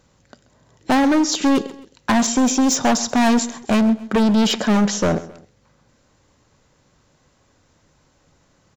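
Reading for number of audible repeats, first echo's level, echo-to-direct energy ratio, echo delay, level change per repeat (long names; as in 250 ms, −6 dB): 2, −18.5 dB, −17.5 dB, 132 ms, −7.5 dB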